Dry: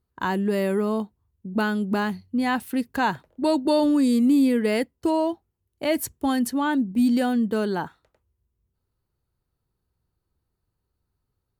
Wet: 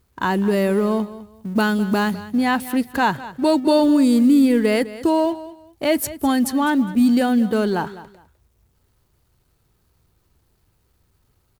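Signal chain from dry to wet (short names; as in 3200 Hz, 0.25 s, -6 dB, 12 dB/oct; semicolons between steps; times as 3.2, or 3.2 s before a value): G.711 law mismatch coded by mu; 1.03–2.26 tone controls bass +1 dB, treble +5 dB; feedback echo 0.205 s, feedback 23%, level -16 dB; gain +4 dB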